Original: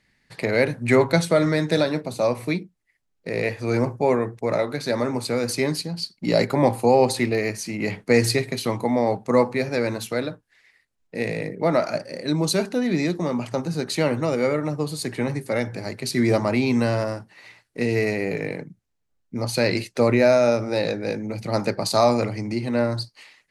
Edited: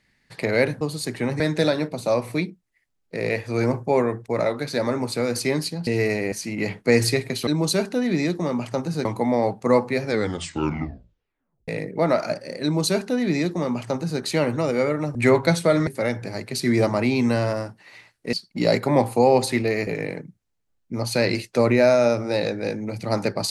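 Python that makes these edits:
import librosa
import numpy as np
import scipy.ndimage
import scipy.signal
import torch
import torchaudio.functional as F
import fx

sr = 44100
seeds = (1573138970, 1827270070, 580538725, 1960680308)

y = fx.edit(x, sr, fx.swap(start_s=0.81, length_s=0.72, other_s=14.79, other_length_s=0.59),
    fx.swap(start_s=6.0, length_s=1.54, other_s=17.84, other_length_s=0.45),
    fx.tape_stop(start_s=9.68, length_s=1.64),
    fx.duplicate(start_s=12.27, length_s=1.58, to_s=8.69), tone=tone)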